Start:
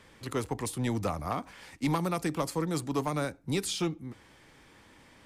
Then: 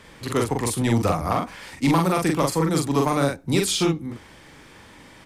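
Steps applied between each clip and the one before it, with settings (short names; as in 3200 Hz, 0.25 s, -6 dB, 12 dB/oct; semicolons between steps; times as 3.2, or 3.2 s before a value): doubler 43 ms -2.5 dB; gain +8 dB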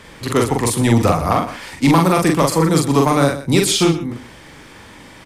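echo 0.123 s -14 dB; gain +6.5 dB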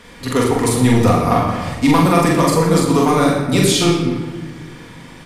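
shoebox room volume 1400 m³, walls mixed, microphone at 1.8 m; gain -2.5 dB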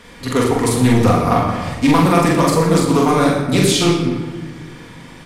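Doppler distortion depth 0.18 ms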